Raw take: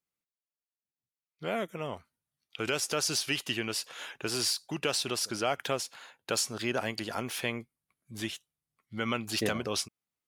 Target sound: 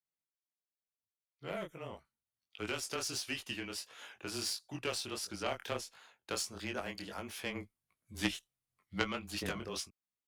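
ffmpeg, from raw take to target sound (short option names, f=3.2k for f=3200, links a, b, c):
-filter_complex "[0:a]asplit=3[a][b][c];[a]afade=t=out:st=7.54:d=0.02[d];[b]acontrast=72,afade=t=in:st=7.54:d=0.02,afade=t=out:st=9.01:d=0.02[e];[c]afade=t=in:st=9.01:d=0.02[f];[d][e][f]amix=inputs=3:normalize=0,flanger=delay=18:depth=6:speed=1.5,aeval=exprs='0.158*(cos(1*acos(clip(val(0)/0.158,-1,1)))-cos(1*PI/2))+0.0501*(cos(3*acos(clip(val(0)/0.158,-1,1)))-cos(3*PI/2))+0.00891*(cos(5*acos(clip(val(0)/0.158,-1,1)))-cos(5*PI/2))+0.00126*(cos(7*acos(clip(val(0)/0.158,-1,1)))-cos(7*PI/2))':c=same,afreqshift=-21,volume=5dB"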